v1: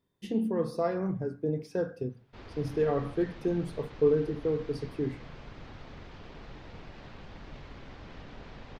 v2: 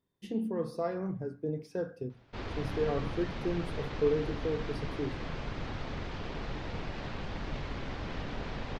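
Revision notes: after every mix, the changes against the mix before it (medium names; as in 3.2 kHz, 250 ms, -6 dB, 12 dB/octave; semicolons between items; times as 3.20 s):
speech -4.0 dB; background +8.5 dB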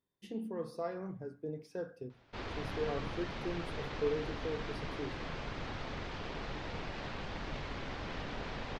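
speech -3.5 dB; master: add bass shelf 350 Hz -5.5 dB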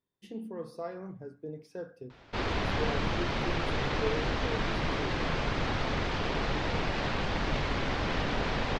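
background +10.5 dB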